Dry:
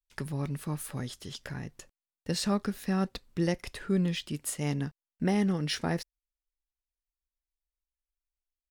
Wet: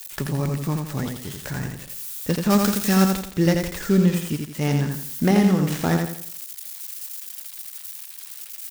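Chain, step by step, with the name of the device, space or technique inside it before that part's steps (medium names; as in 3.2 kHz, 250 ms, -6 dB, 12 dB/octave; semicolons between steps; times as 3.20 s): budget class-D amplifier (dead-time distortion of 0.13 ms; zero-crossing glitches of -32.5 dBFS); 2.50–3.11 s: treble shelf 2.6 kHz +11.5 dB; feedback delay 84 ms, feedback 37%, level -4.5 dB; trim +8.5 dB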